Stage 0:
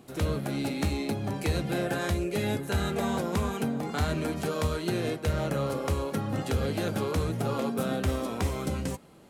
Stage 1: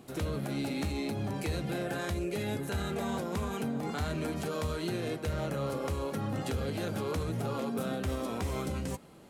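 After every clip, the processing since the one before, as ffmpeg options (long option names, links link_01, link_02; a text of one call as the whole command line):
ffmpeg -i in.wav -af "alimiter=level_in=1.5dB:limit=-24dB:level=0:latency=1:release=80,volume=-1.5dB" out.wav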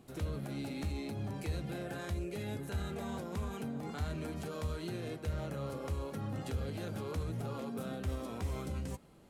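ffmpeg -i in.wav -af "lowshelf=frequency=82:gain=11.5,volume=-7.5dB" out.wav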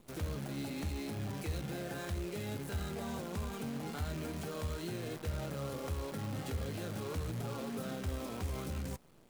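ffmpeg -i in.wav -filter_complex "[0:a]asplit=2[link_01][link_02];[link_02]alimiter=level_in=11.5dB:limit=-24dB:level=0:latency=1:release=164,volume=-11.5dB,volume=-3dB[link_03];[link_01][link_03]amix=inputs=2:normalize=0,acrusher=bits=8:dc=4:mix=0:aa=0.000001,volume=-3.5dB" out.wav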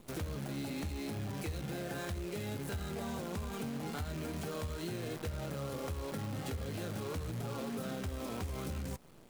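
ffmpeg -i in.wav -af "acompressor=threshold=-40dB:ratio=6,volume=4.5dB" out.wav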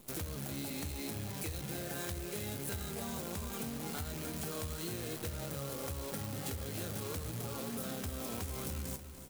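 ffmpeg -i in.wav -filter_complex "[0:a]crystalizer=i=2:c=0,asplit=2[link_01][link_02];[link_02]aecho=0:1:294|588|882|1176|1470:0.266|0.13|0.0639|0.0313|0.0153[link_03];[link_01][link_03]amix=inputs=2:normalize=0,volume=-2.5dB" out.wav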